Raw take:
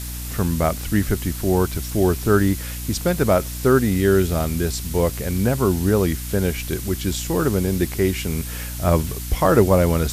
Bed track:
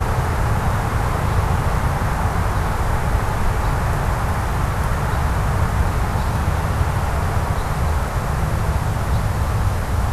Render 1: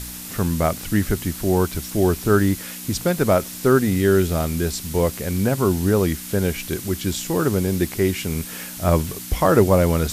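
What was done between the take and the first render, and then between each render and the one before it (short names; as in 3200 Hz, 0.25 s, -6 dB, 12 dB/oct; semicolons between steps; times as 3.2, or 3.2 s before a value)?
de-hum 60 Hz, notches 2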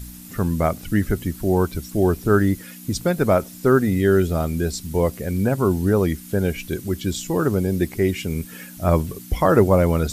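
denoiser 11 dB, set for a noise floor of -34 dBFS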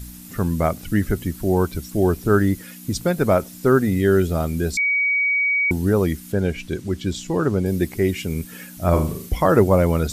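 4.77–5.71 bleep 2260 Hz -16.5 dBFS; 6.32–7.66 air absorption 52 m; 8.89–9.29 flutter echo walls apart 6.6 m, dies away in 0.42 s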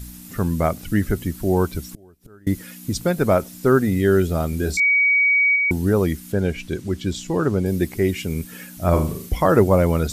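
1.79–2.47 flipped gate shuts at -21 dBFS, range -31 dB; 4.5–5.56 doubler 27 ms -7.5 dB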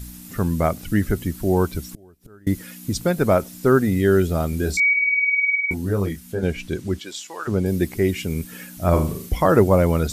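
4.93–6.43 detuned doubles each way 15 cents; 6.98–7.47 HPF 510 Hz -> 1300 Hz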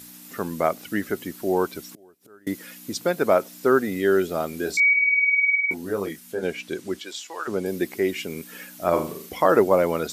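HPF 330 Hz 12 dB/oct; dynamic EQ 9600 Hz, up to -5 dB, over -46 dBFS, Q 0.93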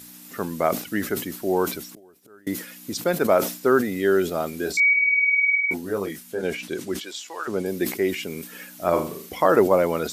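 sustainer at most 120 dB/s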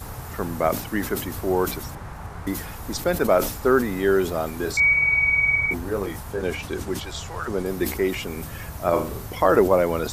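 add bed track -16.5 dB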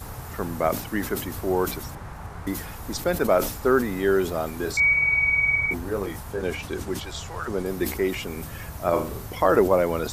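gain -1.5 dB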